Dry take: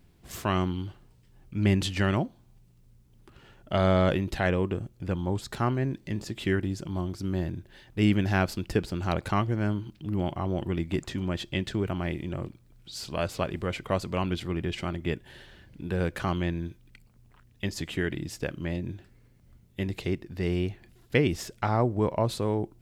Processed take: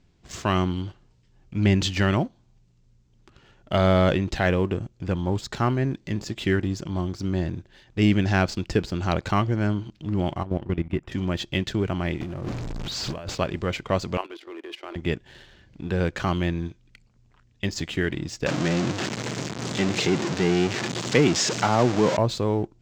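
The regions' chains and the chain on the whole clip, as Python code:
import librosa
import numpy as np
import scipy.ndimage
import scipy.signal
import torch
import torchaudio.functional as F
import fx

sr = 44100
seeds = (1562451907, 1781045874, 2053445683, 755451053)

y = fx.chain(x, sr, fx.level_steps(step_db=14),
    fx.savgol(points=25),
    fx.low_shelf(hz=190.0, db=4.0), at=(10.43, 11.12))
y = fx.chain(y, sr, fx.zero_step(step_db=-31.5),
    fx.high_shelf(hz=3400.0, db=-10.0),
    fx.over_compress(threshold_db=-34.0, ratio=-1.0), at=(12.21, 13.35))
y = fx.chain(y, sr, fx.ellip_highpass(hz=320.0, order=4, stop_db=50),
    fx.air_absorb(metres=94.0),
    fx.level_steps(step_db=10), at=(14.17, 14.96))
y = fx.chain(y, sr, fx.zero_step(step_db=-24.5),
    fx.highpass(hz=130.0, slope=24), at=(18.46, 22.17))
y = scipy.signal.sosfilt(scipy.signal.butter(8, 7400.0, 'lowpass', fs=sr, output='sos'), y)
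y = fx.high_shelf(y, sr, hz=5100.0, db=5.0)
y = fx.leveller(y, sr, passes=1)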